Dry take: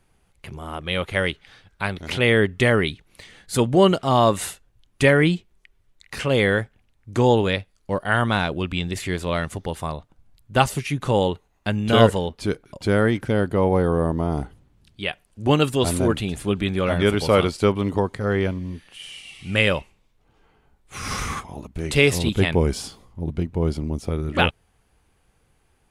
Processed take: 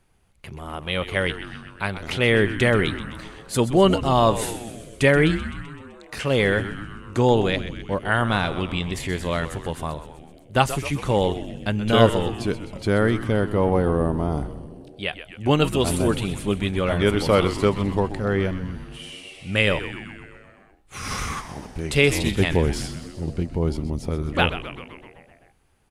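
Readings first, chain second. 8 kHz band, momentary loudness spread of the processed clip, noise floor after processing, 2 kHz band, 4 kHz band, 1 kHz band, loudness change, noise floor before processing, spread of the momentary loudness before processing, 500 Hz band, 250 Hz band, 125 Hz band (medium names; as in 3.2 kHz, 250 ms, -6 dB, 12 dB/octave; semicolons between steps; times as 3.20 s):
-0.5 dB, 17 LU, -53 dBFS, -0.5 dB, -0.5 dB, -0.5 dB, -0.5 dB, -64 dBFS, 14 LU, -1.0 dB, -0.5 dB, -0.5 dB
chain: frequency-shifting echo 128 ms, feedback 65%, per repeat -110 Hz, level -12 dB; trim -1 dB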